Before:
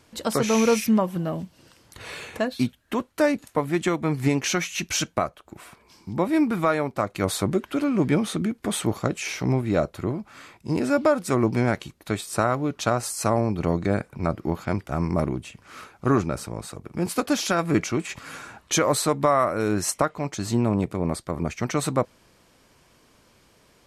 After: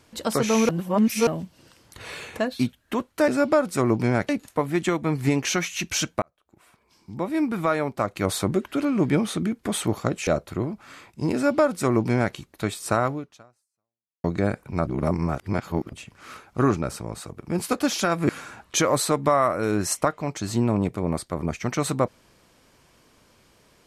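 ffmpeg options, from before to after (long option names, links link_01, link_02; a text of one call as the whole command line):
ffmpeg -i in.wav -filter_complex "[0:a]asplit=11[link_01][link_02][link_03][link_04][link_05][link_06][link_07][link_08][link_09][link_10][link_11];[link_01]atrim=end=0.692[link_12];[link_02]atrim=start=0.688:end=1.272,asetpts=PTS-STARTPTS,areverse[link_13];[link_03]atrim=start=1.268:end=3.282[link_14];[link_04]atrim=start=10.808:end=11.822[link_15];[link_05]atrim=start=3.278:end=5.21,asetpts=PTS-STARTPTS,afade=type=out:start_time=1.928:duration=0.004:curve=hsin[link_16];[link_06]atrim=start=5.21:end=9.262,asetpts=PTS-STARTPTS,afade=type=in:duration=1.68[link_17];[link_07]atrim=start=9.738:end=13.71,asetpts=PTS-STARTPTS,afade=type=out:start_time=2.842:duration=1.13:curve=exp[link_18];[link_08]atrim=start=13.71:end=14.342,asetpts=PTS-STARTPTS,afade=type=in:duration=0.004:curve=hsin[link_19];[link_09]atrim=start=14.338:end=15.402,asetpts=PTS-STARTPTS,areverse[link_20];[link_10]atrim=start=15.398:end=17.762[link_21];[link_11]atrim=start=18.258[link_22];[link_12][link_13]acrossfade=duration=0.004:curve1=hsin:curve2=hsin[link_23];[link_23][link_14]acrossfade=duration=0.004:curve1=hsin:curve2=hsin[link_24];[link_24][link_15]acrossfade=duration=0.004:curve1=hsin:curve2=hsin[link_25];[link_16][link_17]concat=n=2:v=0:a=1[link_26];[link_25][link_26]acrossfade=duration=0.004:curve1=hsin:curve2=hsin[link_27];[link_18][link_19]concat=n=2:v=0:a=1[link_28];[link_27][link_28]acrossfade=duration=0.004:curve1=hsin:curve2=hsin[link_29];[link_29][link_20]acrossfade=duration=0.004:curve1=hsin:curve2=hsin[link_30];[link_30][link_21]acrossfade=duration=0.004:curve1=hsin:curve2=hsin[link_31];[link_31][link_22]acrossfade=duration=0.004:curve1=hsin:curve2=hsin" out.wav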